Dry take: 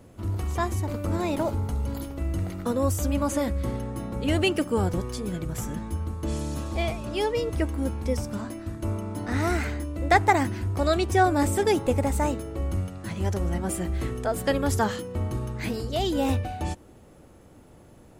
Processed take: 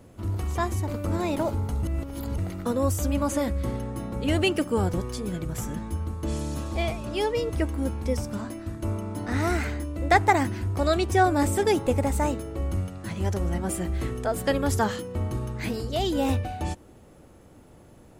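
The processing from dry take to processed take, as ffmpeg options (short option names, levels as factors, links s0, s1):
-filter_complex "[0:a]asplit=3[s0][s1][s2];[s0]atrim=end=1.832[s3];[s1]atrim=start=1.828:end=2.382,asetpts=PTS-STARTPTS,areverse[s4];[s2]atrim=start=2.378[s5];[s3][s4]acrossfade=d=0.004:c1=hsin:c2=hsin[s6];[s6][s5]acrossfade=d=0.004:c1=hsin:c2=hsin"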